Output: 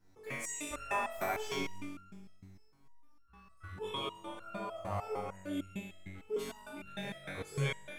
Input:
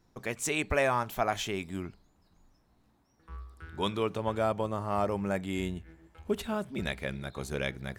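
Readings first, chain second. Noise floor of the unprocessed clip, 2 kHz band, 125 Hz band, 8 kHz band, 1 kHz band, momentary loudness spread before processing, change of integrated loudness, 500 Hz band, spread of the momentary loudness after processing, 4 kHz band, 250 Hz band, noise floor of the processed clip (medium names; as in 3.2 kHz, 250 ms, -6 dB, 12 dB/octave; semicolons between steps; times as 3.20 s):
-68 dBFS, -6.0 dB, -5.5 dB, -4.0 dB, -6.5 dB, 16 LU, -7.5 dB, -8.5 dB, 14 LU, -4.5 dB, -8.5 dB, -60 dBFS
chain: peaking EQ 3.8 kHz -2.5 dB 0.29 oct; in parallel at -1 dB: compression, threshold -37 dBFS, peak gain reduction 13.5 dB; on the sum: flutter echo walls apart 3.6 m, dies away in 1.3 s; flange 0.68 Hz, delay 3.6 ms, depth 9 ms, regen +80%; resonator arpeggio 6.6 Hz 93–1400 Hz; trim +4 dB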